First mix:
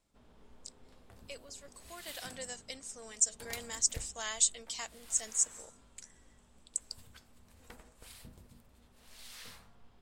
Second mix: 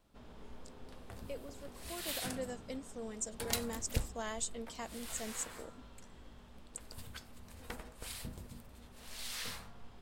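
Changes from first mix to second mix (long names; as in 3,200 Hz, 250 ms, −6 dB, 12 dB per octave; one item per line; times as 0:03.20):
speech: remove meter weighting curve ITU-R 468
background +8.0 dB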